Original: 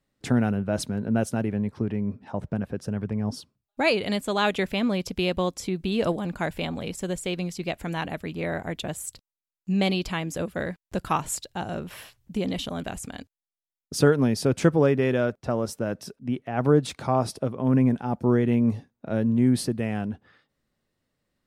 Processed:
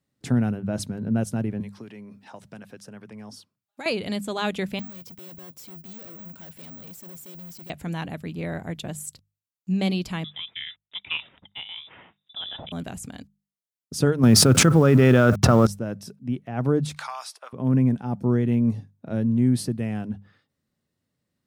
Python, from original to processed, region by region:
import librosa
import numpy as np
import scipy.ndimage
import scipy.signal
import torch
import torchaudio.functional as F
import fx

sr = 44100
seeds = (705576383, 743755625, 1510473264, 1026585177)

y = fx.chain(x, sr, fx.highpass(hz=1100.0, slope=6),
    fx.band_squash(depth_pct=70), at=(1.6, 3.86))
y = fx.chain(y, sr, fx.highpass(hz=130.0, slope=12),
    fx.tube_stage(drive_db=43.0, bias=0.5),
    fx.resample_bad(factor=2, down='filtered', up='zero_stuff'), at=(4.79, 7.7))
y = fx.chain(y, sr, fx.highpass(hz=390.0, slope=6),
    fx.freq_invert(carrier_hz=3700), at=(10.24, 12.72))
y = fx.chain(y, sr, fx.law_mismatch(coded='A'),
    fx.peak_eq(hz=1300.0, db=10.0, octaves=0.41),
    fx.env_flatten(amount_pct=100), at=(14.23, 15.67))
y = fx.chain(y, sr, fx.highpass(hz=980.0, slope=24),
    fx.high_shelf(hz=10000.0, db=-4.5),
    fx.band_squash(depth_pct=100), at=(16.96, 17.53))
y = scipy.signal.sosfilt(scipy.signal.butter(2, 92.0, 'highpass', fs=sr, output='sos'), y)
y = fx.bass_treble(y, sr, bass_db=9, treble_db=4)
y = fx.hum_notches(y, sr, base_hz=50, count=4)
y = F.gain(torch.from_numpy(y), -4.5).numpy()